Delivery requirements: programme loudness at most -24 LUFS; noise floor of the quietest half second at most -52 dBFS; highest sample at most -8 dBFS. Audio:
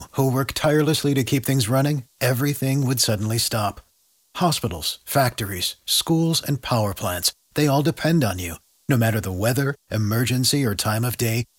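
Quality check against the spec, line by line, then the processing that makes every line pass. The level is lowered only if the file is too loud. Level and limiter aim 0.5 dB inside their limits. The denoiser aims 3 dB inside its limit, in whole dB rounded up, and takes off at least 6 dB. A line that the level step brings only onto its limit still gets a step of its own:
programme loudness -21.5 LUFS: fail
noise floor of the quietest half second -63 dBFS: OK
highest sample -6.5 dBFS: fail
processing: gain -3 dB

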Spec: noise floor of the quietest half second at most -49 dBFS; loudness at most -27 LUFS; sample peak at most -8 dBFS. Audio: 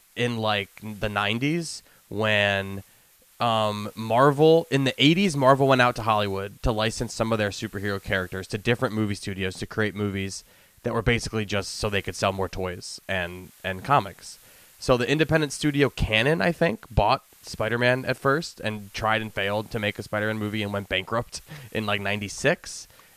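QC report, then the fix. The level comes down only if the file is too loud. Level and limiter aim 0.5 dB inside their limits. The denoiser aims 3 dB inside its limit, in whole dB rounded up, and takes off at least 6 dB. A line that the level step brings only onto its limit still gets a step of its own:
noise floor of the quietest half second -57 dBFS: OK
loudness -24.5 LUFS: fail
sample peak -3.5 dBFS: fail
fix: gain -3 dB; limiter -8.5 dBFS

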